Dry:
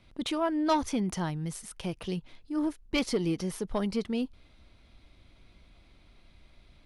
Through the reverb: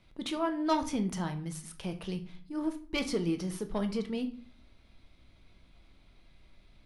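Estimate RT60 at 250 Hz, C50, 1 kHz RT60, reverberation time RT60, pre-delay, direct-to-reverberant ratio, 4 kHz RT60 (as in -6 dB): 0.70 s, 13.5 dB, 0.45 s, 0.45 s, 5 ms, 6.5 dB, 0.35 s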